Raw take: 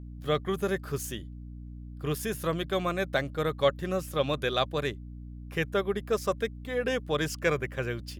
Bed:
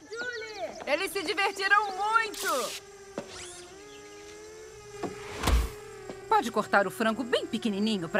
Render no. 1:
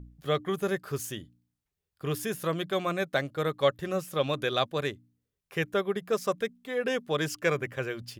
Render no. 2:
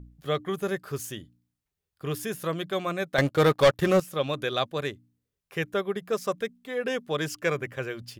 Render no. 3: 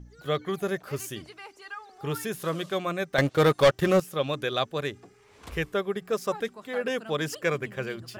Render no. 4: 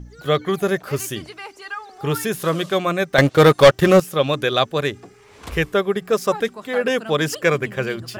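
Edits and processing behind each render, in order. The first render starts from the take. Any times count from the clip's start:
de-hum 60 Hz, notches 5
3.18–4.00 s: waveshaping leveller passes 3
add bed -17.5 dB
trim +9 dB

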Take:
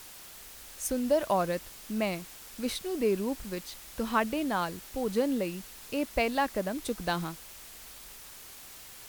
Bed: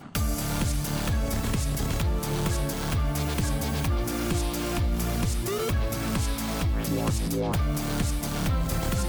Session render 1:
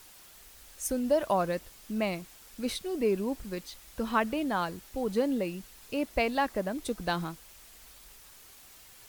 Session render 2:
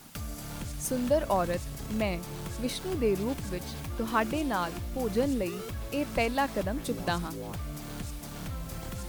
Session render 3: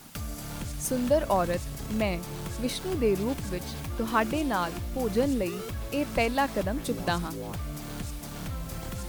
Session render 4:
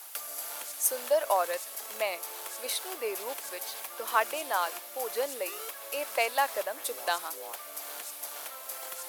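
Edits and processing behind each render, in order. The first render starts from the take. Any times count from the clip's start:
noise reduction 6 dB, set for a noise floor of -48 dBFS
add bed -11.5 dB
trim +2 dB
high-pass 540 Hz 24 dB/octave; peaking EQ 12 kHz +11 dB 0.63 oct

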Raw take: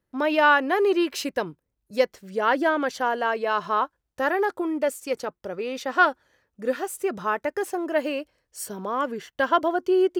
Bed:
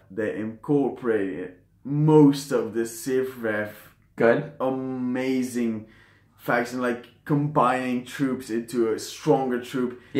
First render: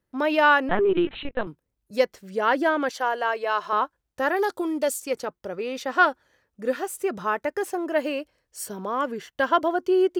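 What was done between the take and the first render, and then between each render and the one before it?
0.69–1.47 s: LPC vocoder at 8 kHz pitch kept; 2.89–3.73 s: high-pass 410 Hz; 4.36–5.02 s: resonant high shelf 3 kHz +7 dB, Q 1.5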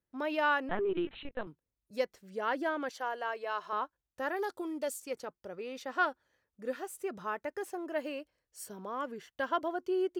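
trim -11 dB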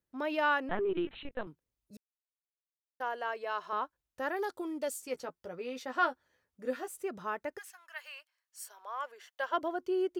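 1.97–3.00 s: mute; 4.91–6.88 s: doubling 12 ms -6 dB; 7.57–9.52 s: high-pass 1.5 kHz -> 480 Hz 24 dB/octave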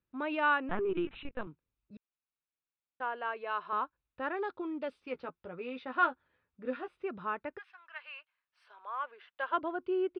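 inverse Chebyshev low-pass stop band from 6.5 kHz, stop band 40 dB; comb 0.8 ms, depth 31%

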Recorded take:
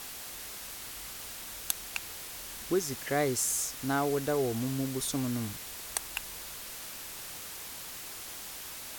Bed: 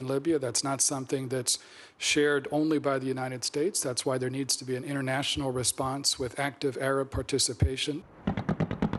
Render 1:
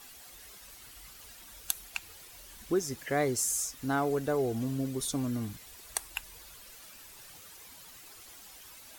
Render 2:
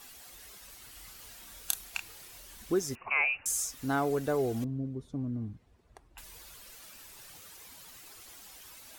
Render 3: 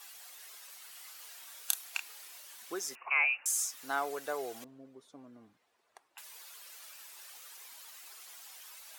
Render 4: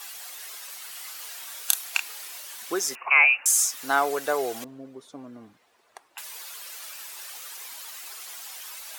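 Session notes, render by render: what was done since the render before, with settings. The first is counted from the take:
noise reduction 11 dB, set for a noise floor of -43 dBFS
0.90–2.38 s: doubling 30 ms -6.5 dB; 2.95–3.46 s: frequency inversion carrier 2.8 kHz; 4.64–6.18 s: band-pass filter 110 Hz, Q 0.52
high-pass 720 Hz 12 dB/octave
trim +11 dB; peak limiter -1 dBFS, peak gain reduction 2.5 dB

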